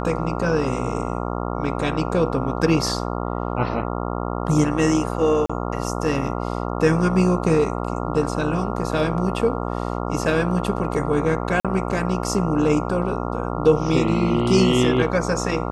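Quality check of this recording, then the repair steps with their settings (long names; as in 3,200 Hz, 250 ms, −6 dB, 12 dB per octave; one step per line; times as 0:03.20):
mains buzz 60 Hz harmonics 23 −26 dBFS
0:05.46–0:05.50: drop-out 35 ms
0:11.60–0:11.65: drop-out 46 ms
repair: hum removal 60 Hz, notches 23
repair the gap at 0:05.46, 35 ms
repair the gap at 0:11.60, 46 ms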